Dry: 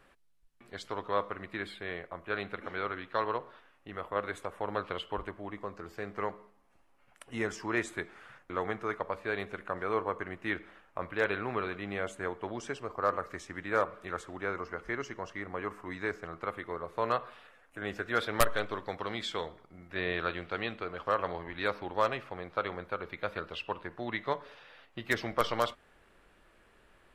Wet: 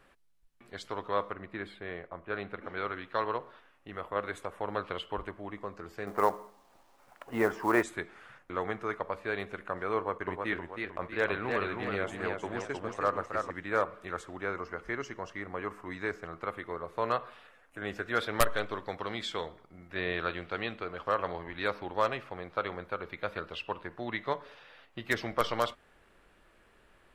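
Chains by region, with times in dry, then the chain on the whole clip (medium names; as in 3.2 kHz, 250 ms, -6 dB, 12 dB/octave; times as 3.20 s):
1.33–2.77 s: treble shelf 2.6 kHz -9 dB + tape noise reduction on one side only decoder only
6.07–7.83 s: FFT filter 110 Hz 0 dB, 910 Hz +11 dB, 11 kHz -19 dB + companded quantiser 6-bit
9.96–13.51 s: gate -44 dBFS, range -7 dB + modulated delay 315 ms, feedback 41%, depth 142 cents, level -4 dB
whole clip: none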